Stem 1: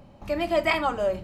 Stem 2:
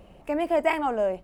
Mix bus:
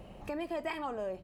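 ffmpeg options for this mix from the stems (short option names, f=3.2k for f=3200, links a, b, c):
-filter_complex "[0:a]volume=-6dB[a];[1:a]volume=-1,adelay=1.6,volume=0dB[b];[a][b]amix=inputs=2:normalize=0,acompressor=threshold=-43dB:ratio=2"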